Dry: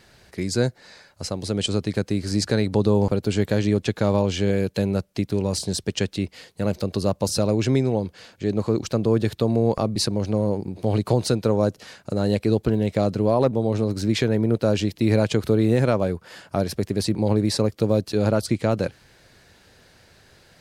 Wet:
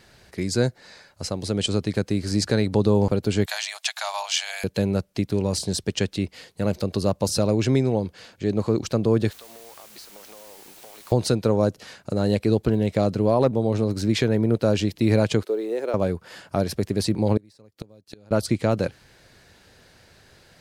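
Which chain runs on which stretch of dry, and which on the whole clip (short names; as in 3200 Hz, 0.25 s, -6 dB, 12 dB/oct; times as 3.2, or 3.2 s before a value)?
3.46–4.64 Chebyshev high-pass 670 Hz, order 6 + high shelf 2600 Hz +12 dB
9.31–11.12 HPF 880 Hz + compressor 10:1, threshold -42 dBFS + requantised 8-bit, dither triangular
15.43–15.94 G.711 law mismatch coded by A + ladder high-pass 350 Hz, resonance 50%
17.37–18.31 de-esser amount 55% + high shelf 2000 Hz +4.5 dB + flipped gate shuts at -16 dBFS, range -31 dB
whole clip: dry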